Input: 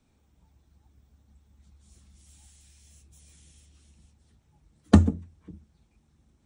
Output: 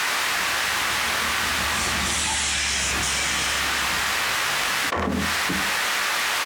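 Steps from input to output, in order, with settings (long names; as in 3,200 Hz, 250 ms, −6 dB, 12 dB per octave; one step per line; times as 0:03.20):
source passing by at 0:02.48, 17 m/s, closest 2.9 metres
in parallel at −6 dB: bit reduction 6 bits
on the sum: sine wavefolder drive 13 dB, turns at −21 dBFS
background noise white −59 dBFS
resonant band-pass 1,600 Hz, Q 0.86
single-tap delay 99 ms −15.5 dB
on a send at −5.5 dB: convolution reverb RT60 0.30 s, pre-delay 14 ms
on the sum: envelope flattener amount 100%
level +7.5 dB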